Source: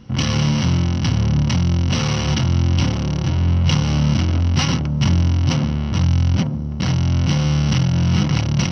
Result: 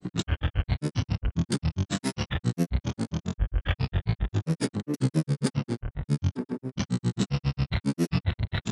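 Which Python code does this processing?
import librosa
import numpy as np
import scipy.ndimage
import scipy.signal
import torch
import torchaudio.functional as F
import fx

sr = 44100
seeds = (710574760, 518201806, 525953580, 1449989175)

y = fx.granulator(x, sr, seeds[0], grain_ms=100.0, per_s=7.4, spray_ms=100.0, spread_st=12)
y = y * librosa.db_to_amplitude(-5.5)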